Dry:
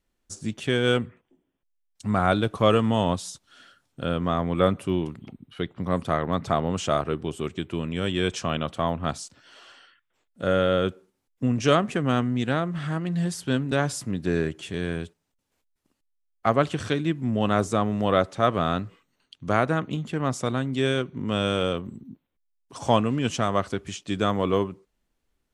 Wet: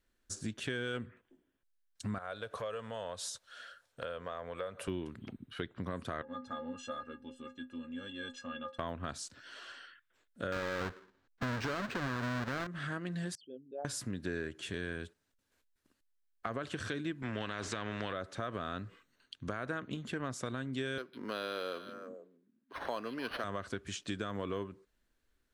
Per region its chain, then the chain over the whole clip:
0:02.18–0:04.88: downward compressor 4 to 1, threshold −32 dBFS + low shelf with overshoot 400 Hz −7.5 dB, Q 3
0:06.22–0:08.79: high-frequency loss of the air 57 metres + notch filter 2,200 Hz, Q 7.8 + stiff-string resonator 250 Hz, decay 0.23 s, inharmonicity 0.03
0:10.52–0:12.67: each half-wave held at its own peak + parametric band 1,200 Hz +5.5 dB 1.6 octaves + linearly interpolated sample-rate reduction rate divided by 4×
0:13.35–0:13.85: spectral envelope exaggerated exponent 3 + pair of resonant band-passes 1,500 Hz, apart 1.8 octaves + high-frequency loss of the air 86 metres
0:17.22–0:18.13: low-pass filter 3,100 Hz + every bin compressed towards the loudest bin 2 to 1
0:20.98–0:23.44: high-pass filter 380 Hz + echo through a band-pass that steps 151 ms, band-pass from 3,600 Hz, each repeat −1.4 octaves, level −11.5 dB + linearly interpolated sample-rate reduction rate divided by 6×
whole clip: thirty-one-band graphic EQ 160 Hz −7 dB, 800 Hz −5 dB, 1,600 Hz +8 dB, 4,000 Hz +3 dB; brickwall limiter −14 dBFS; downward compressor 3 to 1, threshold −35 dBFS; level −2 dB

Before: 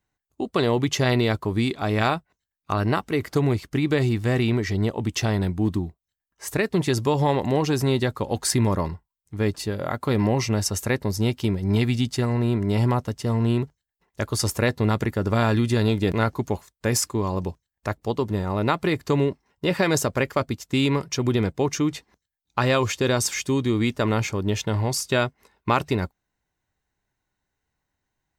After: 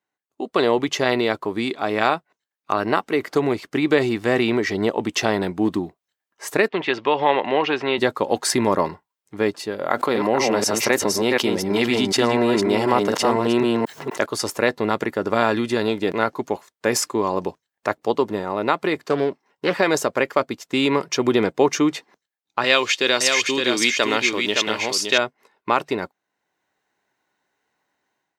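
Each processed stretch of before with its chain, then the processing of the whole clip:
0:06.68–0:07.98: Chebyshev low-pass filter 2,900 Hz, order 3 + spectral tilt +3.5 dB per octave
0:09.90–0:14.26: delay that plays each chunk backwards 247 ms, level −5 dB + low-shelf EQ 110 Hz −11.5 dB + envelope flattener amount 70%
0:18.96–0:19.78: high-pass filter 93 Hz 24 dB per octave + highs frequency-modulated by the lows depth 0.41 ms
0:22.64–0:25.18: one scale factor per block 7 bits + meter weighting curve D + single-tap delay 566 ms −5 dB
whole clip: high-pass filter 320 Hz 12 dB per octave; high-shelf EQ 5,100 Hz −9 dB; automatic gain control; level −1 dB

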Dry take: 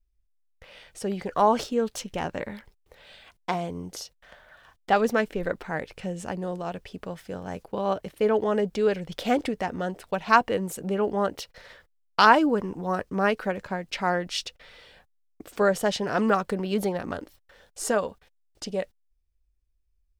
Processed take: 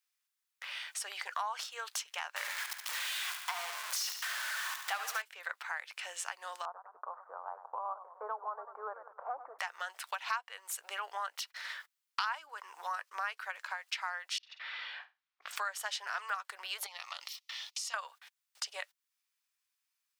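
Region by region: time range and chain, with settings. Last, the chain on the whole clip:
0:02.36–0:05.22: converter with a step at zero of −26 dBFS + repeating echo 71 ms, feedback 50%, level −9 dB
0:06.65–0:09.59: one scale factor per block 5 bits + Butterworth low-pass 1,200 Hz 48 dB per octave + feedback echo with a swinging delay time 100 ms, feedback 41%, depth 151 cents, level −15 dB
0:14.38–0:15.51: flutter between parallel walls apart 8.5 metres, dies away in 0.24 s + compressor whose output falls as the input rises −47 dBFS + high-frequency loss of the air 260 metres
0:16.86–0:17.94: flat-topped bell 2,800 Hz +14 dB 2.5 octaves + phaser with its sweep stopped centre 420 Hz, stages 6 + downward compressor, threshold −40 dBFS
whole clip: inverse Chebyshev high-pass filter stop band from 230 Hz, stop band 70 dB; downward compressor 4 to 1, threshold −47 dBFS; level +9.5 dB

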